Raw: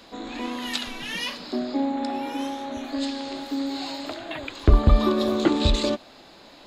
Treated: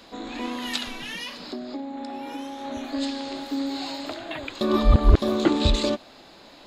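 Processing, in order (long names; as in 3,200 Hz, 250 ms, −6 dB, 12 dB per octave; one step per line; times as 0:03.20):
0:00.93–0:02.65: downward compressor 6 to 1, threshold −31 dBFS, peak gain reduction 10.5 dB
0:04.61–0:05.22: reverse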